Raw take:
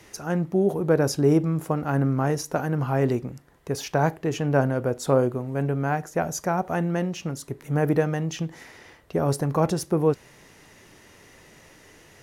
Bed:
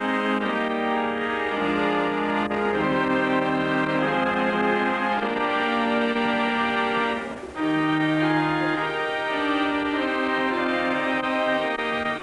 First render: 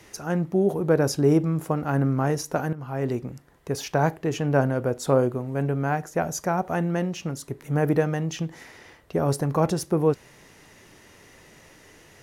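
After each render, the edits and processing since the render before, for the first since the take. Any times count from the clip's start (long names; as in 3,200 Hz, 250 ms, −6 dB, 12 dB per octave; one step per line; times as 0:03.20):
0:02.73–0:03.33: fade in, from −15 dB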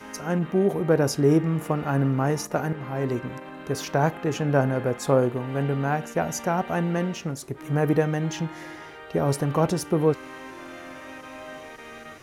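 mix in bed −17 dB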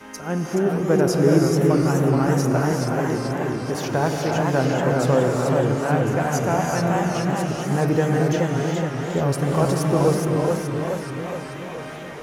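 reverb whose tail is shaped and stops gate 410 ms rising, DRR 1.5 dB
feedback echo with a swinging delay time 427 ms, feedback 59%, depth 176 cents, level −4 dB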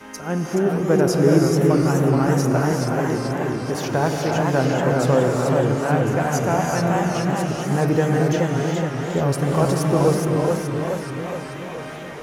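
level +1 dB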